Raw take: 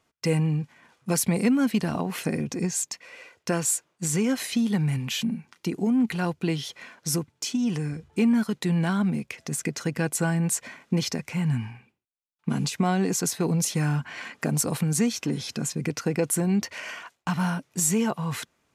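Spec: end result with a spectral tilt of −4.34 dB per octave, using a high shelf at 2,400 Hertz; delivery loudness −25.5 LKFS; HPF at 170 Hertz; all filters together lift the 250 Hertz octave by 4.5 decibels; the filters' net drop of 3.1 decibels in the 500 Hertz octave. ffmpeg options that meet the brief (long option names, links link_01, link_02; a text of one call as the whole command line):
ffmpeg -i in.wav -af "highpass=170,equalizer=frequency=250:width_type=o:gain=9,equalizer=frequency=500:width_type=o:gain=-8,highshelf=frequency=2400:gain=4,volume=-2.5dB" out.wav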